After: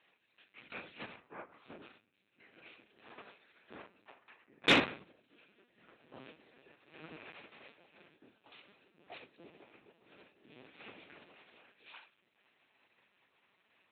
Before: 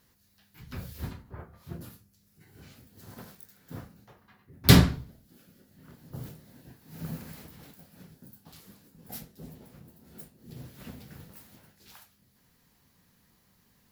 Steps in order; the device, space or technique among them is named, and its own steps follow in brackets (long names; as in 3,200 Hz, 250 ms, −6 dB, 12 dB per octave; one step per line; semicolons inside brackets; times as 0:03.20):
talking toy (linear-prediction vocoder at 8 kHz pitch kept; high-pass filter 420 Hz 12 dB per octave; parametric band 2,500 Hz +10 dB 0.36 octaves; soft clipping −15.5 dBFS, distortion −17 dB)